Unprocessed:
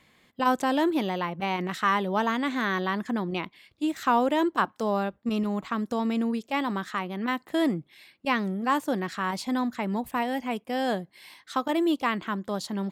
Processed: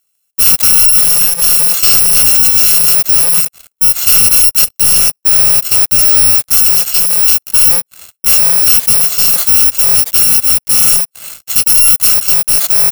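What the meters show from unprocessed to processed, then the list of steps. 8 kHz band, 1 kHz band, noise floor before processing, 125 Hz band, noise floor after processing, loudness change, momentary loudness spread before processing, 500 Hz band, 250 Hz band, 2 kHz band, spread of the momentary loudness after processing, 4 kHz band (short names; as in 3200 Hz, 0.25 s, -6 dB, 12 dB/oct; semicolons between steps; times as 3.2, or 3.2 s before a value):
+40.5 dB, -1.5 dB, -65 dBFS, +9.0 dB, -67 dBFS, +22.0 dB, 7 LU, -0.5 dB, -7.0 dB, +8.5 dB, 4 LU, +22.5 dB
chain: FFT order left unsorted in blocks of 128 samples; HPF 350 Hz 12 dB/oct; high shelf 5900 Hz +9 dB; sample leveller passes 5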